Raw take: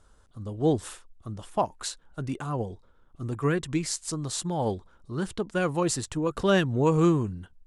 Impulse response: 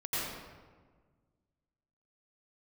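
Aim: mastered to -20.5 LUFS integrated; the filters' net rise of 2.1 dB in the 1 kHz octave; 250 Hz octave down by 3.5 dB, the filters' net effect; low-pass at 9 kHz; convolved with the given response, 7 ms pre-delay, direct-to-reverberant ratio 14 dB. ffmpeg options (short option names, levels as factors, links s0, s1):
-filter_complex "[0:a]lowpass=9000,equalizer=f=250:t=o:g=-6,equalizer=f=1000:t=o:g=3,asplit=2[s0][s1];[1:a]atrim=start_sample=2205,adelay=7[s2];[s1][s2]afir=irnorm=-1:irlink=0,volume=0.0944[s3];[s0][s3]amix=inputs=2:normalize=0,volume=2.66"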